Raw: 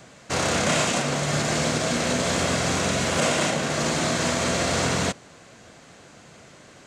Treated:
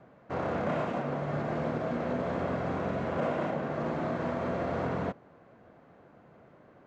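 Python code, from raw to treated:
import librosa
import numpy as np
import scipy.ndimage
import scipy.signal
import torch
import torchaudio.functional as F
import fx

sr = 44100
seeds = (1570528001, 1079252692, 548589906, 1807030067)

y = scipy.signal.sosfilt(scipy.signal.butter(2, 1100.0, 'lowpass', fs=sr, output='sos'), x)
y = fx.low_shelf(y, sr, hz=140.0, db=-5.5)
y = y * 10.0 ** (-5.0 / 20.0)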